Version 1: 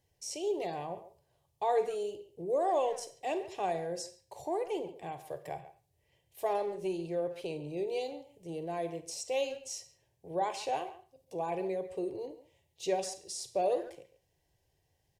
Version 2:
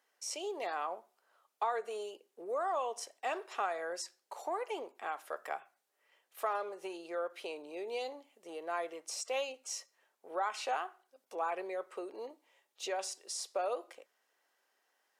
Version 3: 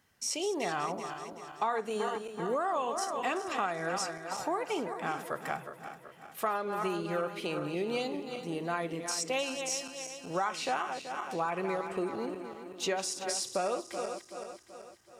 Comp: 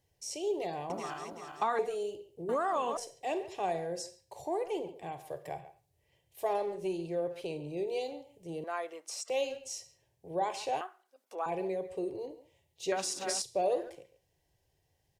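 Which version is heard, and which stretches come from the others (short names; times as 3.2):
1
0.9–1.79 from 3
2.49–2.97 from 3
8.64–9.3 from 2
10.81–11.46 from 2
12.92–13.42 from 3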